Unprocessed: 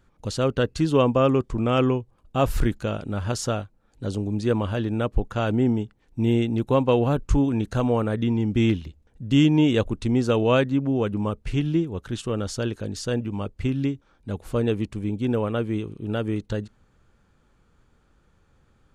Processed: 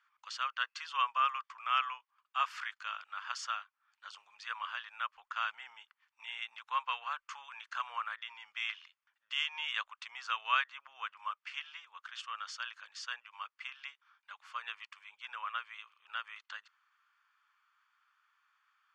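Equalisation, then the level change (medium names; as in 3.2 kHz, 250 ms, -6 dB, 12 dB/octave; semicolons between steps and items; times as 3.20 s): elliptic high-pass 1.1 kHz, stop band 70 dB; distance through air 170 m; band-stop 3.9 kHz, Q 7.8; 0.0 dB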